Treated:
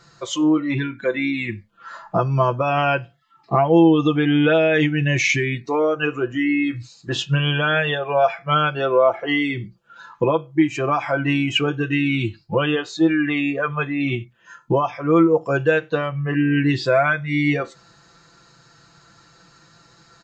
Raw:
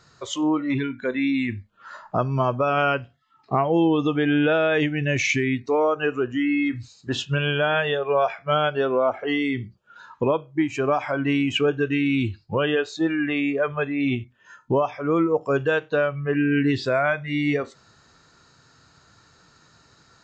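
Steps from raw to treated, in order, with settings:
comb filter 5.9 ms, depth 70%
level +2 dB

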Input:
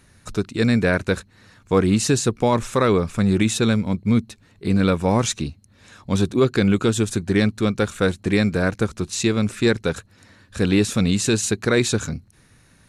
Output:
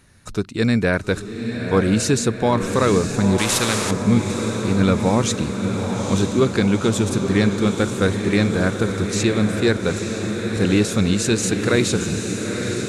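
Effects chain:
feedback delay with all-pass diffusion 903 ms, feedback 69%, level −6.5 dB
0:03.38–0:03.91: every bin compressed towards the loudest bin 2 to 1

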